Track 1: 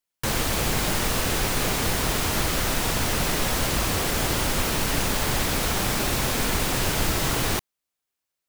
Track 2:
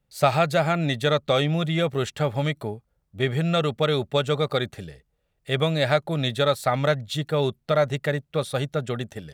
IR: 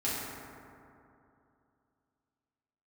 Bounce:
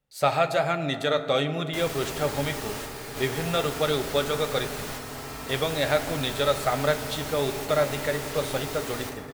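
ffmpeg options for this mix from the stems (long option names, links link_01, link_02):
-filter_complex "[0:a]adelay=1500,volume=-11dB,asplit=2[link_01][link_02];[link_02]volume=-4dB[link_03];[1:a]volume=1dB,asplit=3[link_04][link_05][link_06];[link_05]volume=-16dB[link_07];[link_06]apad=whole_len=440179[link_08];[link_01][link_08]sidechaingate=range=-33dB:threshold=-42dB:ratio=16:detection=peak[link_09];[2:a]atrim=start_sample=2205[link_10];[link_03][link_07]amix=inputs=2:normalize=0[link_11];[link_11][link_10]afir=irnorm=-1:irlink=0[link_12];[link_09][link_04][link_12]amix=inputs=3:normalize=0,bass=frequency=250:gain=-7,treble=frequency=4000:gain=0,flanger=delay=6.5:depth=3.8:regen=-69:speed=1.3:shape=sinusoidal"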